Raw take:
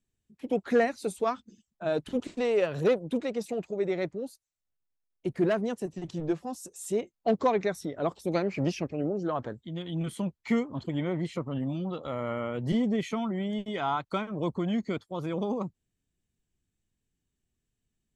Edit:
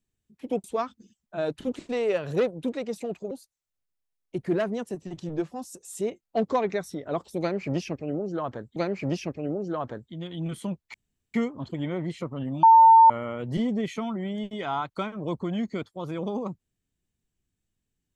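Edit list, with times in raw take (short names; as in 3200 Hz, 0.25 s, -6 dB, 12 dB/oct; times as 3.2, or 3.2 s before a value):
0.64–1.12 cut
3.79–4.22 cut
8.31–9.67 loop, 2 plays
10.49 insert room tone 0.40 s
11.78–12.25 bleep 902 Hz -10 dBFS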